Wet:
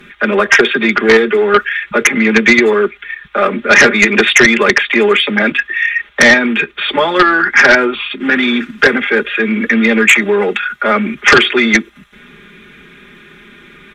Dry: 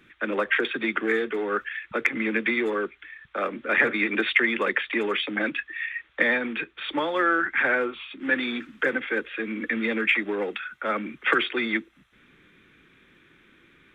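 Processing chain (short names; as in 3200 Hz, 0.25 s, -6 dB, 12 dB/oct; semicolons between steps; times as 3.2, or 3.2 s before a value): comb 4.9 ms, depth 95%; in parallel at -0.5 dB: level quantiser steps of 20 dB; on the sum: sine folder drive 10 dB, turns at 1 dBFS; gain -2.5 dB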